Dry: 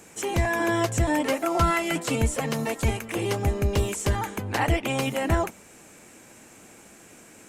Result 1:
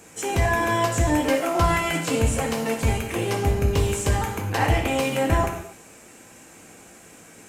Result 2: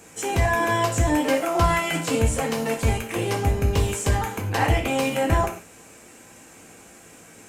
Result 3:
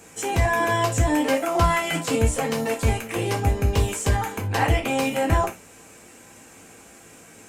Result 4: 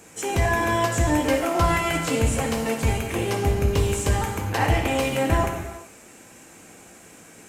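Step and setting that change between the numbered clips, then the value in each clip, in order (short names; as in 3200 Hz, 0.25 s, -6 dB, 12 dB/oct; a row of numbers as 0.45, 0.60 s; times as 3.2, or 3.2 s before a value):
non-linear reverb, gate: 0.3, 0.17, 0.1, 0.45 s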